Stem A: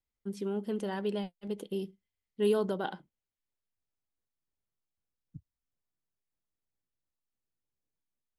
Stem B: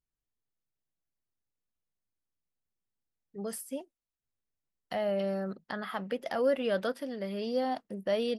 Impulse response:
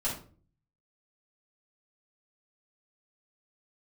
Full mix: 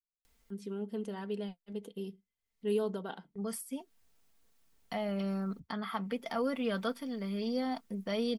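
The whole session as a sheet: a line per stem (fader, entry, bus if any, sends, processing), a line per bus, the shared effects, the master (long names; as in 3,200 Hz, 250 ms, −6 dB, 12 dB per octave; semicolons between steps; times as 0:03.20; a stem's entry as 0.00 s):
−6.5 dB, 0.25 s, no send, upward compression, threshold −44 dBFS
−2.5 dB, 0.00 s, no send, noise gate with hold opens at −45 dBFS; comb filter 0.9 ms, depth 45%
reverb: not used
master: comb filter 4.4 ms, depth 45%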